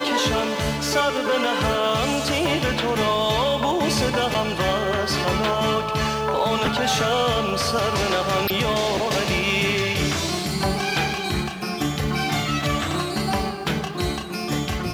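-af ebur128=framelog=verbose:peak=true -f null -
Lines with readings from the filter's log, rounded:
Integrated loudness:
  I:         -22.0 LUFS
  Threshold: -32.0 LUFS
Loudness range:
  LRA:         2.8 LU
  Threshold: -41.8 LUFS
  LRA low:   -23.8 LUFS
  LRA high:  -21.0 LUFS
True peak:
  Peak:       -9.8 dBFS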